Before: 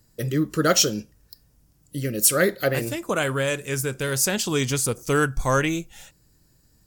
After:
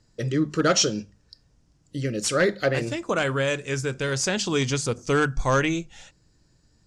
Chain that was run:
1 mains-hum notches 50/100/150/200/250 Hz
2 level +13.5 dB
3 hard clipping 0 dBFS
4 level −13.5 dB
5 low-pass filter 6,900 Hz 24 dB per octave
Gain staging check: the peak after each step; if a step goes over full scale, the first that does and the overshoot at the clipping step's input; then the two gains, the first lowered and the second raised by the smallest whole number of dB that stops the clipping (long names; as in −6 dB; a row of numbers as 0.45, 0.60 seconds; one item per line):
−5.0, +8.5, 0.0, −13.5, −11.5 dBFS
step 2, 8.5 dB
step 2 +4.5 dB, step 4 −4.5 dB